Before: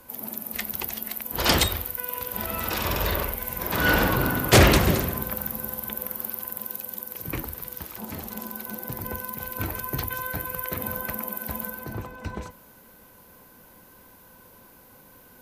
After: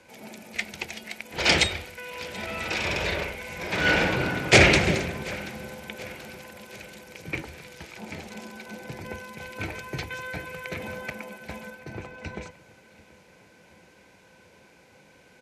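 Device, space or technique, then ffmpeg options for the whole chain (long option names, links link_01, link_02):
car door speaker: -filter_complex "[0:a]highpass=89,equalizer=frequency=110:width_type=q:width=4:gain=-5,equalizer=frequency=250:width_type=q:width=4:gain=-7,equalizer=frequency=1100:width_type=q:width=4:gain=-10,equalizer=frequency=2300:width_type=q:width=4:gain=10,lowpass=frequency=7700:width=0.5412,lowpass=frequency=7700:width=1.3066,asettb=1/sr,asplit=3[link_01][link_02][link_03];[link_01]atrim=end=11.104[link_04];[link_02]atrim=start=11.1:end=12.03,asetpts=PTS-STARTPTS,afade=type=in:duration=0.004:curve=qsin,afade=type=out:start_time=0.926:duration=0.004:curve=qsin,agate=range=-33dB:threshold=-36dB:ratio=3:detection=peak[link_05];[link_03]atrim=start=12.026[link_06];[link_04][link_05]acrossfade=duration=0.004:curve1=hsin:curve2=qsin[link_07];[link_07][link_06]acrossfade=duration=0.004:curve1=qsin:curve2=hsin,aecho=1:1:732|1464|2196|2928:0.0841|0.0463|0.0255|0.014"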